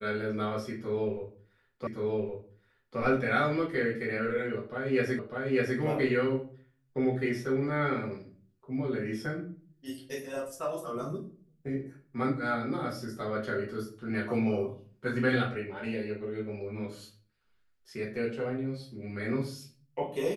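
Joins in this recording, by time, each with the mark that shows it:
1.87 repeat of the last 1.12 s
5.19 repeat of the last 0.6 s

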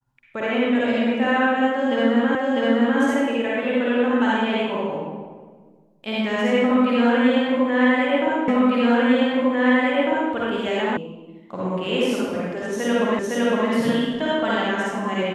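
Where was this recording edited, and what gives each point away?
2.35 repeat of the last 0.65 s
8.48 repeat of the last 1.85 s
10.97 sound cut off
13.19 repeat of the last 0.51 s

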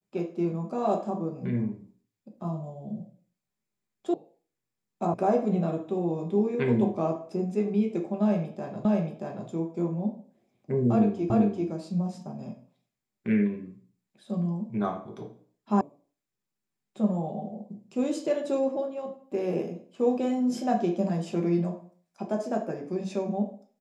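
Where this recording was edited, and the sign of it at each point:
4.14 sound cut off
5.14 sound cut off
8.85 repeat of the last 0.63 s
11.3 repeat of the last 0.39 s
15.81 sound cut off

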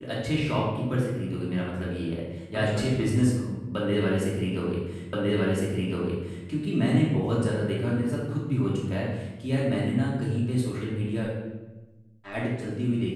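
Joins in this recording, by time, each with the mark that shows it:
5.13 repeat of the last 1.36 s

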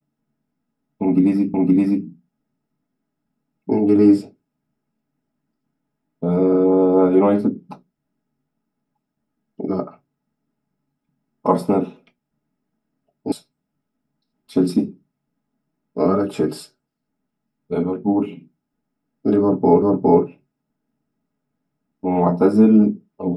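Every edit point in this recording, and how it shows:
1.54 repeat of the last 0.52 s
13.32 sound cut off
19.82 repeat of the last 0.41 s

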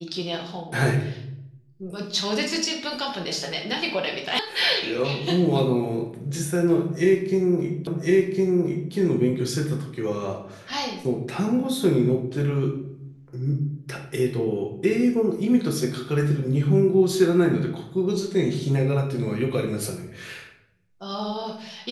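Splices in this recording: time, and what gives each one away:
4.39 sound cut off
7.87 repeat of the last 1.06 s

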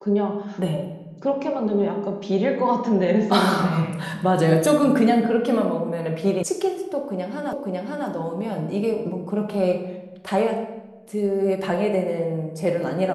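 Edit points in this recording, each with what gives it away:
6.43 sound cut off
7.53 repeat of the last 0.55 s

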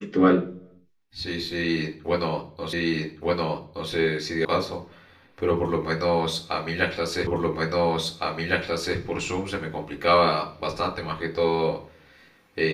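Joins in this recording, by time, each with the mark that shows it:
2.73 repeat of the last 1.17 s
4.45 sound cut off
7.27 repeat of the last 1.71 s

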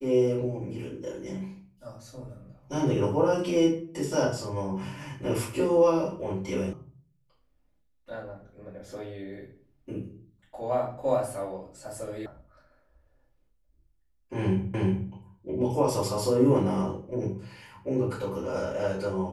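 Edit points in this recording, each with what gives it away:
6.73 sound cut off
12.26 sound cut off
14.74 repeat of the last 0.36 s

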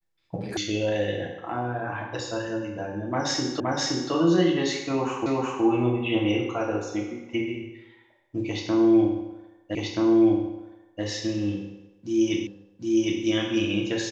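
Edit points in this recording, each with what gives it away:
0.57 sound cut off
3.6 repeat of the last 0.52 s
5.26 repeat of the last 0.37 s
9.75 repeat of the last 1.28 s
12.47 repeat of the last 0.76 s

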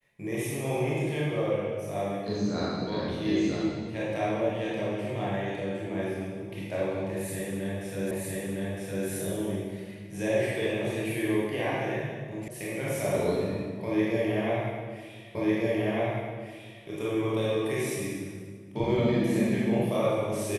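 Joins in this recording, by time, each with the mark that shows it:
8.11 repeat of the last 0.96 s
12.48 sound cut off
15.35 repeat of the last 1.5 s

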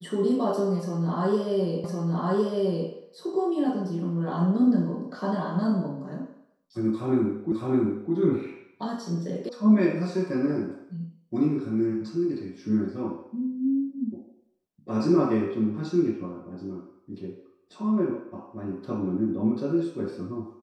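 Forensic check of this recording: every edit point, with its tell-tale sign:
1.84 repeat of the last 1.06 s
7.52 repeat of the last 0.61 s
9.49 sound cut off

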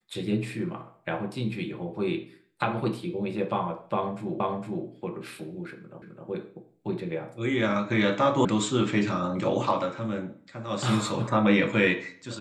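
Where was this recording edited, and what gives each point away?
4.4 repeat of the last 0.46 s
6.02 repeat of the last 0.26 s
8.45 sound cut off

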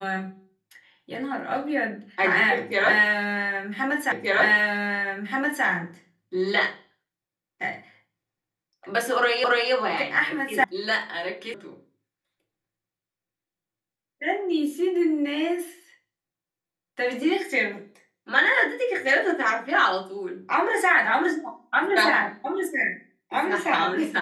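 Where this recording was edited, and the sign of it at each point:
4.12 repeat of the last 1.53 s
9.44 repeat of the last 0.28 s
10.64 sound cut off
11.54 sound cut off

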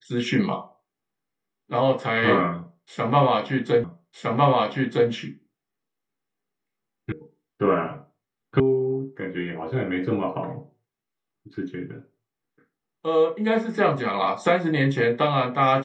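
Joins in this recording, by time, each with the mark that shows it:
3.84 repeat of the last 1.26 s
7.12 sound cut off
8.6 sound cut off

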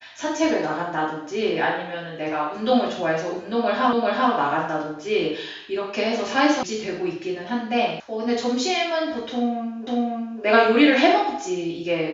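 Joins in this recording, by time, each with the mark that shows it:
3.93 repeat of the last 0.39 s
6.63 sound cut off
8 sound cut off
9.87 repeat of the last 0.55 s

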